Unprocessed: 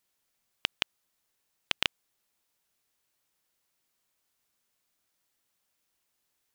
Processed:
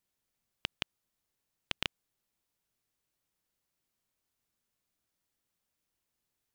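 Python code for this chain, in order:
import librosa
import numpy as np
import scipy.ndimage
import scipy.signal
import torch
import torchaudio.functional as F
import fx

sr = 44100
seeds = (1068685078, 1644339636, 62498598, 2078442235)

y = fx.low_shelf(x, sr, hz=330.0, db=9.5)
y = F.gain(torch.from_numpy(y), -7.0).numpy()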